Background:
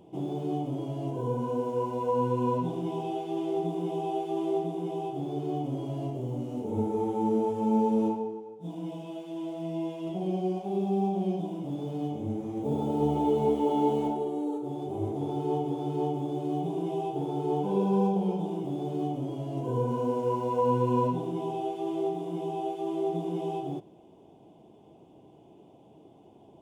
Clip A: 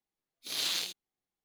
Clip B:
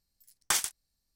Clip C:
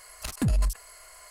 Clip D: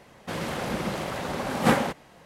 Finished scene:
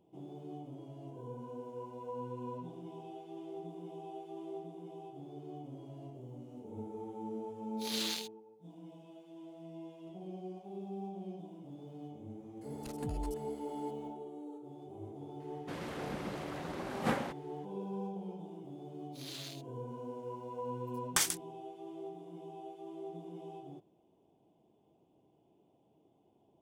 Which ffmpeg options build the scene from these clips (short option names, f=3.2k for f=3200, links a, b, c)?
-filter_complex "[1:a]asplit=2[a][b];[0:a]volume=-15dB[c];[4:a]highshelf=f=5k:g=-4.5[d];[2:a]agate=range=-33dB:threshold=-55dB:ratio=3:release=100:detection=peak[e];[a]atrim=end=1.44,asetpts=PTS-STARTPTS,volume=-5dB,afade=t=in:d=0.004:c=hsin,afade=t=out:st=1.436:d=0.004:c=hsin,adelay=7350[f];[3:a]atrim=end=1.3,asetpts=PTS-STARTPTS,volume=-16dB,afade=t=in:d=0.004:c=hsin,afade=t=out:st=1.296:d=0.004:c=hsin,adelay=12610[g];[d]atrim=end=2.25,asetpts=PTS-STARTPTS,volume=-11.5dB,afade=t=in:d=0.004:c=hsin,afade=t=out:st=2.246:d=0.004:c=hsin,adelay=679140S[h];[b]atrim=end=1.44,asetpts=PTS-STARTPTS,volume=-14.5dB,afade=t=in:d=0.004:c=hsin,afade=t=out:st=1.436:d=0.004:c=hsin,adelay=18690[i];[e]atrim=end=1.15,asetpts=PTS-STARTPTS,volume=-2.5dB,afade=t=in:d=0.004:c=hsin,afade=t=out:st=1.146:d=0.004:c=hsin,adelay=20660[j];[c][f][g][h][i][j]amix=inputs=6:normalize=0"